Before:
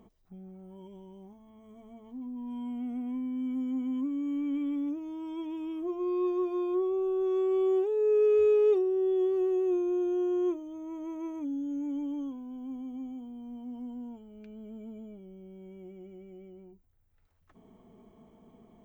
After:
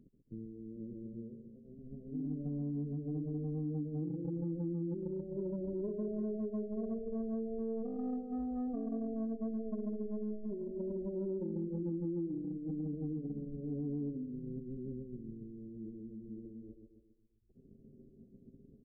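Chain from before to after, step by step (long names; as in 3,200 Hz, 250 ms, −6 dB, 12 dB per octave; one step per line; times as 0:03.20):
leveller curve on the samples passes 2
inverse Chebyshev low-pass filter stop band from 1,700 Hz, stop band 70 dB
repeating echo 136 ms, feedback 54%, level −6 dB
downward compressor 6 to 1, threshold −32 dBFS, peak gain reduction 11.5 dB
phase-vocoder pitch shift with formants kept −9 semitones
level −3 dB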